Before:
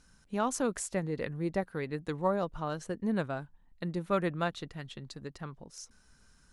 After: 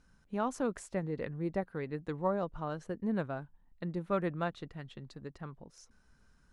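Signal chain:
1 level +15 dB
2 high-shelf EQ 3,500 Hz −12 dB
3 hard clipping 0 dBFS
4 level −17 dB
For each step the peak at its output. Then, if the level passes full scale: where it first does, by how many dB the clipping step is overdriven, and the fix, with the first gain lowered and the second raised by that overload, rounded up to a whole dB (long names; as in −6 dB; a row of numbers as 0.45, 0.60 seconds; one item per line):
−0.5, −1.5, −1.5, −18.5 dBFS
no step passes full scale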